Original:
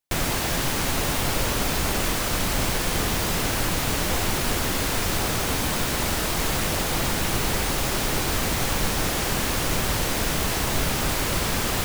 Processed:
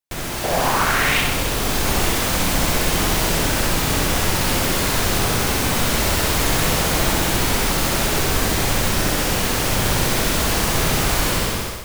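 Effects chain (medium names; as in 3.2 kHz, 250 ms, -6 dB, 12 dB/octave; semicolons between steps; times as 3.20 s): fade out at the end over 0.56 s; 0.43–1.20 s: peaking EQ 540 Hz -> 2.7 kHz +14.5 dB 1 oct; flutter echo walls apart 11 m, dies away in 0.92 s; level rider; trim -4.5 dB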